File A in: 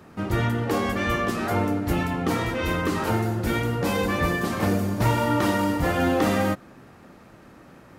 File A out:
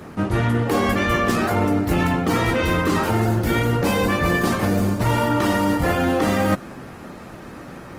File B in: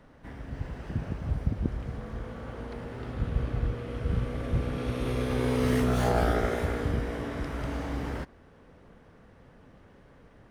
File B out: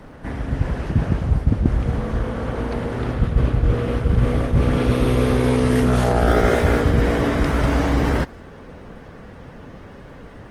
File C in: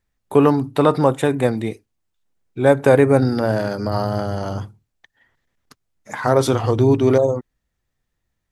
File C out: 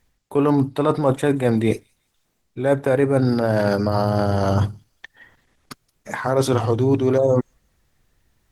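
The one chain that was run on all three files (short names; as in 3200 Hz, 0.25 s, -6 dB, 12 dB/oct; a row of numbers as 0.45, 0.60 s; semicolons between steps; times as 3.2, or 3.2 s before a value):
reverse; compressor 10:1, threshold -27 dBFS; reverse; thin delay 0.176 s, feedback 33%, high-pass 3700 Hz, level -23 dB; Opus 20 kbps 48000 Hz; match loudness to -20 LUFS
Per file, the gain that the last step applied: +11.5, +15.5, +12.5 dB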